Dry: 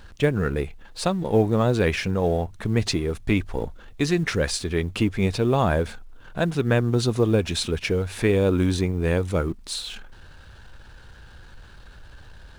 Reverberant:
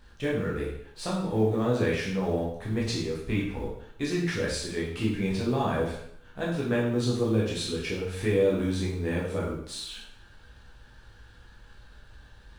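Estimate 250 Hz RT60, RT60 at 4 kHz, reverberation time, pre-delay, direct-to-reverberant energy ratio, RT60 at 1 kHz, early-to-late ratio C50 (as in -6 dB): 0.65 s, 0.65 s, 0.65 s, 7 ms, -5.0 dB, 0.65 s, 3.0 dB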